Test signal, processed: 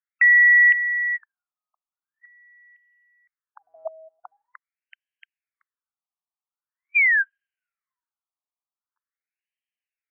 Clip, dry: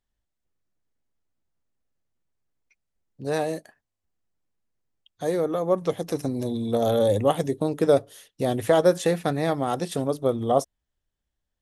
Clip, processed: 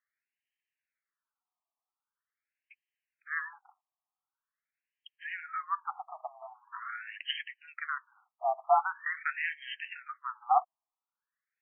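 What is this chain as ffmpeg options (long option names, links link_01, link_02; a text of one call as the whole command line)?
ffmpeg -i in.wav -af "crystalizer=i=7:c=0,highpass=frequency=520:width_type=q:width=0.5412,highpass=frequency=520:width_type=q:width=1.307,lowpass=frequency=3400:width_type=q:width=0.5176,lowpass=frequency=3400:width_type=q:width=0.7071,lowpass=frequency=3400:width_type=q:width=1.932,afreqshift=50,afftfilt=real='re*between(b*sr/1024,890*pow(2300/890,0.5+0.5*sin(2*PI*0.44*pts/sr))/1.41,890*pow(2300/890,0.5+0.5*sin(2*PI*0.44*pts/sr))*1.41)':imag='im*between(b*sr/1024,890*pow(2300/890,0.5+0.5*sin(2*PI*0.44*pts/sr))/1.41,890*pow(2300/890,0.5+0.5*sin(2*PI*0.44*pts/sr))*1.41)':win_size=1024:overlap=0.75,volume=-1.5dB" out.wav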